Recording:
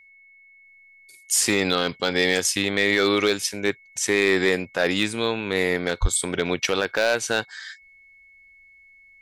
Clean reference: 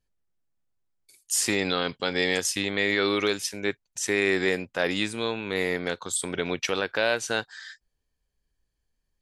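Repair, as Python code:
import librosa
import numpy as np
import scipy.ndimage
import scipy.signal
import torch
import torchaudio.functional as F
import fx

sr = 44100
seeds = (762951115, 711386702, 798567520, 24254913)

y = fx.fix_declip(x, sr, threshold_db=-10.5)
y = fx.notch(y, sr, hz=2200.0, q=30.0)
y = fx.highpass(y, sr, hz=140.0, slope=24, at=(6.01, 6.13), fade=0.02)
y = fx.gain(y, sr, db=fx.steps((0.0, 0.0), (0.65, -4.5)))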